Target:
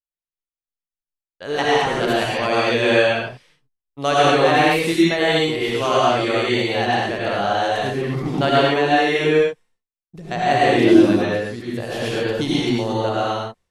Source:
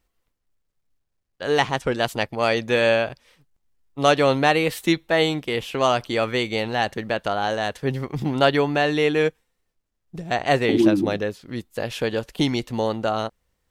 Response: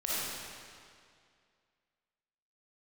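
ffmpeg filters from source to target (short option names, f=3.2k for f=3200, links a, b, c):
-filter_complex "[0:a]agate=range=-33dB:threshold=-50dB:ratio=3:detection=peak[a];[1:a]atrim=start_sample=2205,atrim=end_sample=6174,asetrate=24696,aresample=44100[b];[a][b]afir=irnorm=-1:irlink=0,volume=-5.5dB"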